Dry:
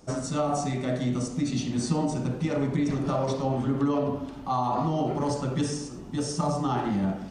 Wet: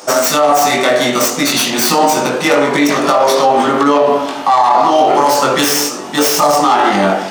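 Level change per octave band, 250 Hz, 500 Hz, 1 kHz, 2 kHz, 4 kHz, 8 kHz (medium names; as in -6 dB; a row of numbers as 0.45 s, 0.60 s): +10.0 dB, +18.0 dB, +20.5 dB, +25.0 dB, +23.5 dB, +21.5 dB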